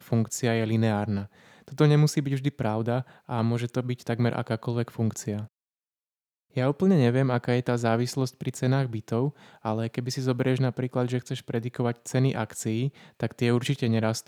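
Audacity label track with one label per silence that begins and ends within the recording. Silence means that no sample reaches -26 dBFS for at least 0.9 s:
5.400000	6.570000	silence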